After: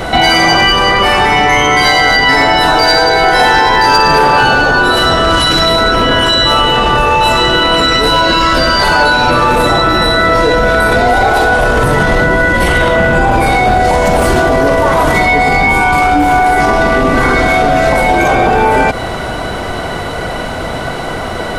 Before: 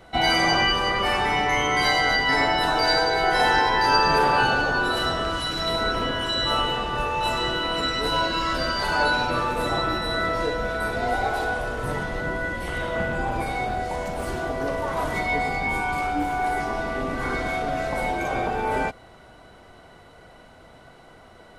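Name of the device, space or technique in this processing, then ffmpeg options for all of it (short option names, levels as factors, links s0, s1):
loud club master: -af "acompressor=threshold=0.0501:ratio=2,asoftclip=type=hard:threshold=0.112,alimiter=level_in=35.5:limit=0.891:release=50:level=0:latency=1,volume=0.891"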